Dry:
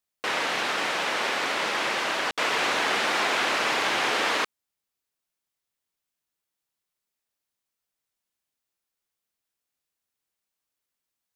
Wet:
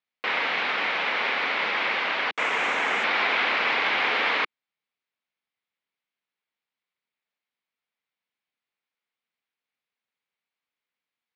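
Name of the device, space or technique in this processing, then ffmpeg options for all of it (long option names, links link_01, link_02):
kitchen radio: -filter_complex "[0:a]asettb=1/sr,asplit=3[link_01][link_02][link_03];[link_01]atrim=end=2.354[link_04];[link_02]atrim=start=2.35:end=3.04,asetpts=PTS-STARTPTS,afade=type=in:duration=0.004:curve=qsin,afade=type=out:start_time=0.686:duration=0.004:curve=qsin,highshelf=frequency=5900:width_type=q:width=3:gain=10[link_05];[link_03]atrim=start=3.036[link_06];[link_04][link_05]acrossfade=duration=0.004:curve1=hsin:curve2=qsin[link_07];[link_07][link_06]acrossfade=duration=0.004:curve1=qsin:curve2=hsin,highpass=180,equalizer=frequency=340:width_type=q:width=4:gain=-6,equalizer=frequency=610:width_type=q:width=4:gain=-3,equalizer=frequency=2200:width_type=q:width=4:gain=6,lowpass=frequency=4000:width=0.5412,lowpass=frequency=4000:width=1.3066"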